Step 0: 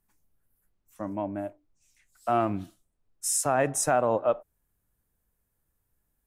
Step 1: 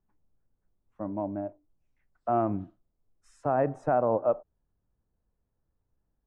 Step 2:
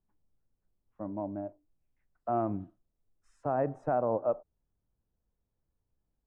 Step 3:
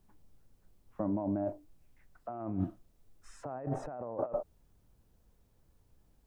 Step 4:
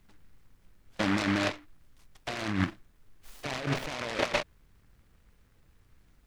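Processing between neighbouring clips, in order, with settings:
low-pass filter 1,000 Hz 12 dB per octave
high-shelf EQ 2,500 Hz −8 dB; level −3.5 dB
compressor whose output falls as the input rises −42 dBFS, ratio −1; level +5.5 dB
short delay modulated by noise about 1,400 Hz, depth 0.28 ms; level +5 dB

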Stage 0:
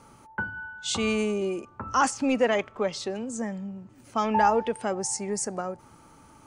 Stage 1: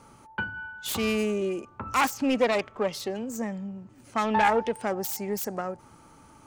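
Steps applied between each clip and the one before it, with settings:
phase distortion by the signal itself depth 0.18 ms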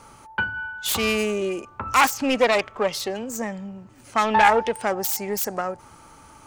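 parametric band 210 Hz −7 dB 2.4 octaves
level +7.5 dB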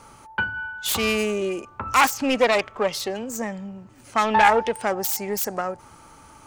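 no processing that can be heard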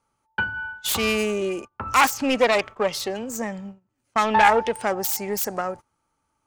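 noise gate −35 dBFS, range −26 dB

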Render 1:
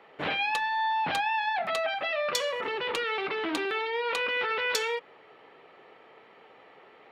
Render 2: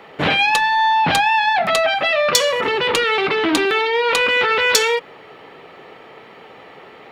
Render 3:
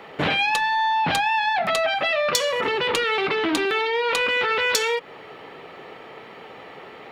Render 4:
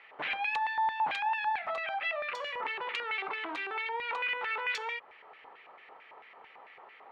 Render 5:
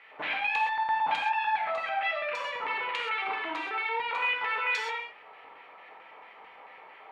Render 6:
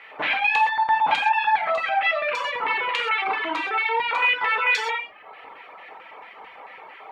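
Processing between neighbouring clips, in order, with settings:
bass and treble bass +7 dB, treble +6 dB; in parallel at +2.5 dB: soft clipping −18.5 dBFS, distortion −21 dB; on the sum: level +5 dB
downward compressor 2 to 1, threshold −23 dBFS, peak gain reduction 7.5 dB
auto-filter band-pass square 4.5 Hz 950–2,200 Hz; high-shelf EQ 6,900 Hz −6 dB; level −5 dB
reverb whose tail is shaped and stops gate 150 ms flat, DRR −0.5 dB
reverb reduction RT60 0.67 s; level +9 dB

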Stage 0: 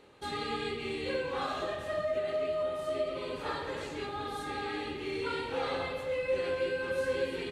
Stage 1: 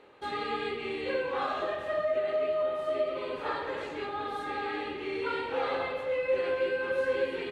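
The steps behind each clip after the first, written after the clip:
bass and treble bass −10 dB, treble −13 dB
level +3.5 dB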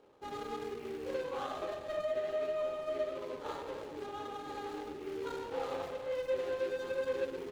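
running median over 25 samples
level −5 dB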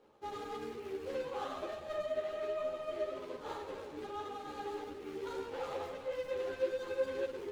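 string-ensemble chorus
level +1.5 dB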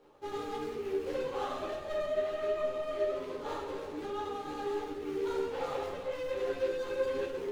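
rectangular room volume 42 cubic metres, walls mixed, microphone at 0.44 metres
level +2.5 dB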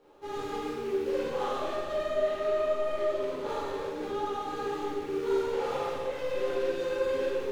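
four-comb reverb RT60 1.1 s, DRR −2 dB

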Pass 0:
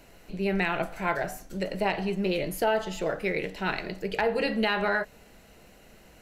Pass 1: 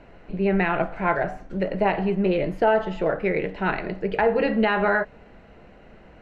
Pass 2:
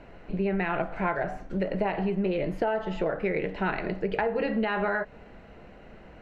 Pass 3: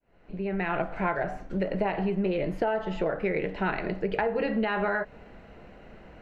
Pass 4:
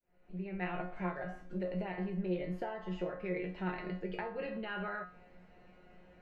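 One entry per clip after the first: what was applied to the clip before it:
low-pass filter 1,900 Hz 12 dB per octave; level +6 dB
downward compressor, threshold −24 dBFS, peak gain reduction 9 dB
fade in at the beginning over 0.72 s
tuned comb filter 180 Hz, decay 0.35 s, harmonics all, mix 90%; level +1 dB

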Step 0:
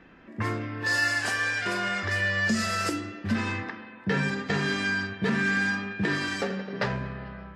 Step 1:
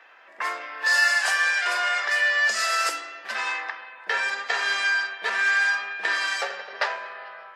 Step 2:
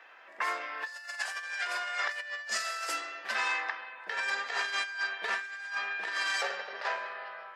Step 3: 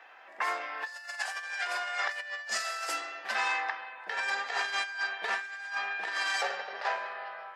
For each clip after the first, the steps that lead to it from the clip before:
high-pass filter 640 Hz 24 dB per octave; level +5.5 dB
compressor whose output falls as the input rises −27 dBFS, ratio −0.5; level −6 dB
parametric band 780 Hz +7 dB 0.31 octaves

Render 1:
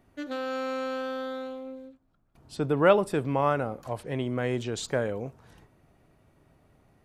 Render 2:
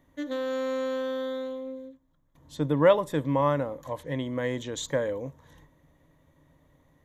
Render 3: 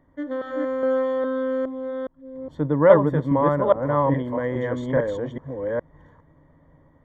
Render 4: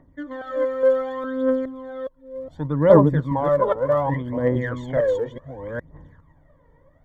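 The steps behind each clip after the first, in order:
EQ curve with evenly spaced ripples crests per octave 1.1, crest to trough 11 dB; level −2 dB
delay that plays each chunk backwards 414 ms, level 0 dB; Savitzky-Golay smoothing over 41 samples; level +3.5 dB
phase shifter 0.67 Hz, delay 2.3 ms, feedback 69%; level −2.5 dB

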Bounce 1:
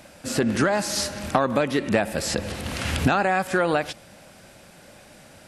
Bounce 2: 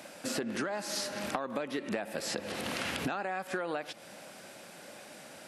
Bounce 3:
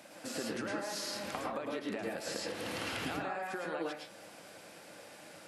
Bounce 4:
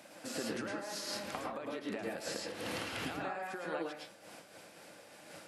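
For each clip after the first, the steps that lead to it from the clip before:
high-pass filter 230 Hz 12 dB per octave; dynamic equaliser 8,000 Hz, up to −4 dB, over −43 dBFS, Q 0.91; downward compressor 6 to 1, threshold −32 dBFS, peak gain reduction 15.5 dB
convolution reverb RT60 0.35 s, pre-delay 103 ms, DRR −2 dB; level −6.5 dB
amplitude modulation by smooth noise, depth 65%; level +2 dB

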